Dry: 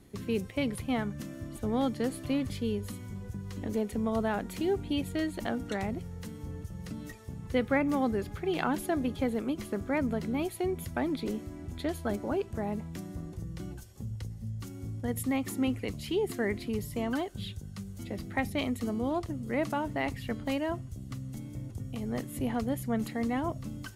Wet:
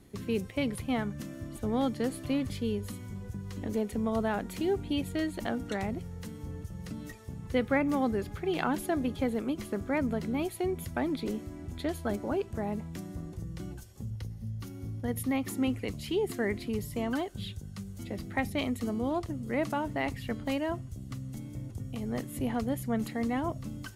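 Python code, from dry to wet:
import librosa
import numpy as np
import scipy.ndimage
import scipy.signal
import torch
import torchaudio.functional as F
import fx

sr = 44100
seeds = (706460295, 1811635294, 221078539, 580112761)

y = fx.peak_eq(x, sr, hz=7700.0, db=-8.5, octaves=0.29, at=(14.1, 15.49))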